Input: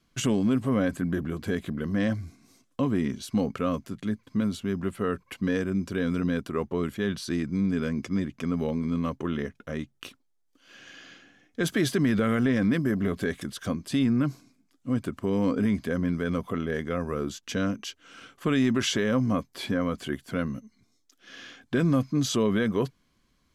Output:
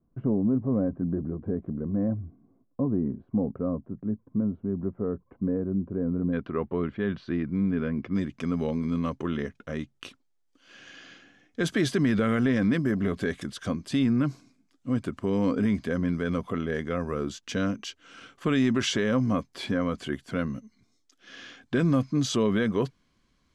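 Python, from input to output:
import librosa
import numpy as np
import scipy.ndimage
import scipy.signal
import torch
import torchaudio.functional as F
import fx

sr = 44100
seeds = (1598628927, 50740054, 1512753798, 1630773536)

y = fx.bessel_lowpass(x, sr, hz=fx.steps((0.0, 620.0), (6.32, 2100.0), (8.14, 8000.0)), order=4)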